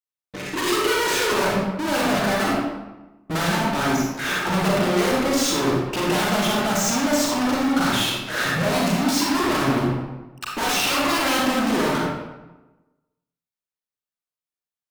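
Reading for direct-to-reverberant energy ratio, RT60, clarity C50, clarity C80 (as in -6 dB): -3.5 dB, 1.1 s, -0.5 dB, 2.5 dB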